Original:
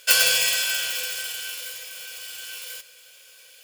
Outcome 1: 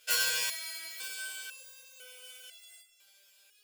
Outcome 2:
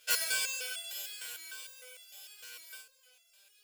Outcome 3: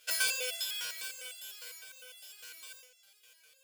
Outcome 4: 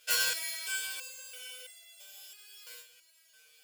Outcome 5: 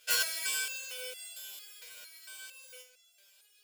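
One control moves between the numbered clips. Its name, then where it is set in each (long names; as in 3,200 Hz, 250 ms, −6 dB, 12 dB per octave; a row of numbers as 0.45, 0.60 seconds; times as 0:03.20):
step-sequenced resonator, speed: 2, 6.6, 9.9, 3, 4.4 Hertz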